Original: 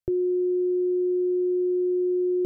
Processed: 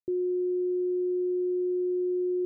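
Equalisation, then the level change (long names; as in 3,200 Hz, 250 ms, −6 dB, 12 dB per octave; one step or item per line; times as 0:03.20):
resonant band-pass 310 Hz, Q 2.2
−2.5 dB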